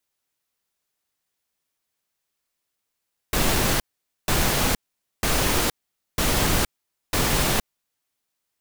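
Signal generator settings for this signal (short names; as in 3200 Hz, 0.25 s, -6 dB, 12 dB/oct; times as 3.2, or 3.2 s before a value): noise bursts pink, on 0.47 s, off 0.48 s, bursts 5, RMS -21 dBFS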